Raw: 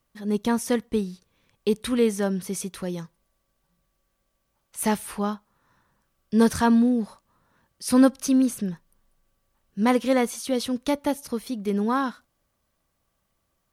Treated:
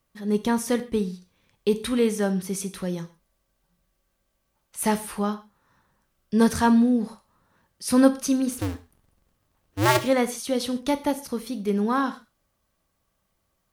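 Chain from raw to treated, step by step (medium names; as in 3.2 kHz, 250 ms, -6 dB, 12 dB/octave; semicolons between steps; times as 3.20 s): 8.52–10.01 s: cycle switcher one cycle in 2, inverted; gated-style reverb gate 160 ms falling, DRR 9.5 dB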